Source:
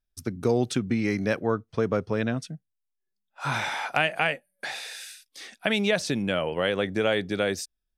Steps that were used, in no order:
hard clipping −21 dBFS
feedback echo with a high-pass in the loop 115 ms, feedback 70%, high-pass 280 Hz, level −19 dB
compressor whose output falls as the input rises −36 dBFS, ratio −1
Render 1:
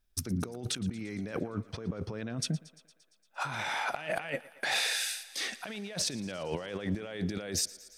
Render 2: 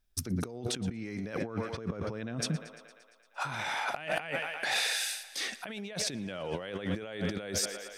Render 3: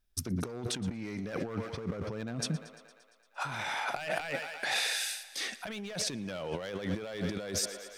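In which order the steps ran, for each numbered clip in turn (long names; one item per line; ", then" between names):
compressor whose output falls as the input rises, then hard clipping, then feedback echo with a high-pass in the loop
feedback echo with a high-pass in the loop, then compressor whose output falls as the input rises, then hard clipping
hard clipping, then feedback echo with a high-pass in the loop, then compressor whose output falls as the input rises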